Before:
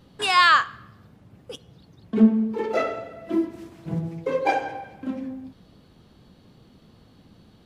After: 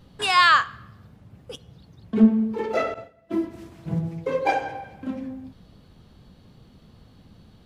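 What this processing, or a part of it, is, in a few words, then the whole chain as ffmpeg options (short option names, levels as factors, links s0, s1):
low shelf boost with a cut just above: -filter_complex "[0:a]lowshelf=f=100:g=8,equalizer=f=320:t=o:w=0.77:g=-3,asettb=1/sr,asplit=3[s0][s1][s2];[s0]atrim=end=2.944[s3];[s1]atrim=start=2.94:end=3.51,asetpts=PTS-STARTPTS,afade=t=in:d=0.004:c=qsin,afade=t=out:st=0.566:d=0.004:c=qsin,agate=range=0.0224:threshold=0.0355:ratio=3:detection=peak[s4];[s2]atrim=start=3.506[s5];[s3][s4]acrossfade=d=0.004:c1=hsin:c2=qsin[s6];[s6][s5]acrossfade=d=0.004:c1=qsin:c2=hsin"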